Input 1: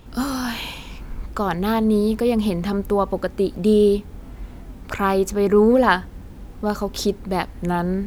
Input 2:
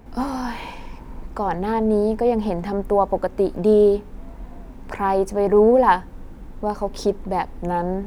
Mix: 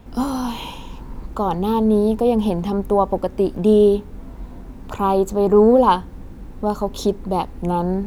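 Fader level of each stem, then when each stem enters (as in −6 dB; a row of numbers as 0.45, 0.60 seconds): −5.0, −1.0 decibels; 0.00, 0.00 seconds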